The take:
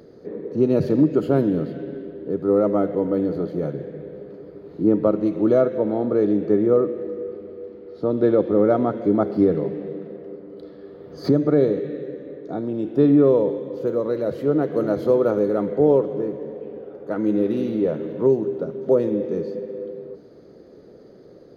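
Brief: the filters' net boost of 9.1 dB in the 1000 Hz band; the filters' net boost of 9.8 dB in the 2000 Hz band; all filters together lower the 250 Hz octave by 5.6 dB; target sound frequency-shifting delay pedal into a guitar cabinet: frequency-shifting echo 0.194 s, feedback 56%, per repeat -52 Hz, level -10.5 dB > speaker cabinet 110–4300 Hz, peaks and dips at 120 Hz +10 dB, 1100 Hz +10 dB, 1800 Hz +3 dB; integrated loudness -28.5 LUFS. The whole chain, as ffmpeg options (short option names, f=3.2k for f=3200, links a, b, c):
-filter_complex "[0:a]equalizer=f=250:t=o:g=-8.5,equalizer=f=1k:t=o:g=5.5,equalizer=f=2k:t=o:g=7.5,asplit=7[a][b][c][d][e][f][g];[b]adelay=194,afreqshift=-52,volume=-10.5dB[h];[c]adelay=388,afreqshift=-104,volume=-15.5dB[i];[d]adelay=582,afreqshift=-156,volume=-20.6dB[j];[e]adelay=776,afreqshift=-208,volume=-25.6dB[k];[f]adelay=970,afreqshift=-260,volume=-30.6dB[l];[g]adelay=1164,afreqshift=-312,volume=-35.7dB[m];[a][h][i][j][k][l][m]amix=inputs=7:normalize=0,highpass=110,equalizer=f=120:t=q:w=4:g=10,equalizer=f=1.1k:t=q:w=4:g=10,equalizer=f=1.8k:t=q:w=4:g=3,lowpass=f=4.3k:w=0.5412,lowpass=f=4.3k:w=1.3066,volume=-6.5dB"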